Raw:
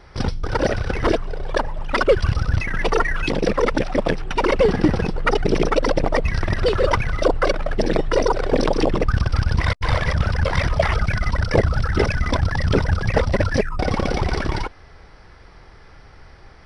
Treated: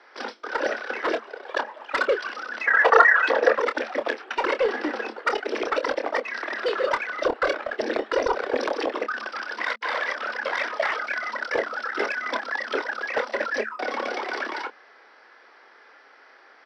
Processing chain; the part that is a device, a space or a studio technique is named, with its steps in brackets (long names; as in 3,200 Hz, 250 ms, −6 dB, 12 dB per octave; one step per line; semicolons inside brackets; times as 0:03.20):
Chebyshev high-pass filter 220 Hz, order 10
intercom (band-pass filter 470–4,700 Hz; parametric band 1,600 Hz +5 dB 0.42 octaves; soft clipping −11 dBFS, distortion −18 dB; double-tracking delay 27 ms −9 dB)
0:02.67–0:03.55: gain on a spectral selection 450–2,000 Hz +10 dB
0:07.09–0:08.57: low-shelf EQ 190 Hz +10.5 dB
level −2.5 dB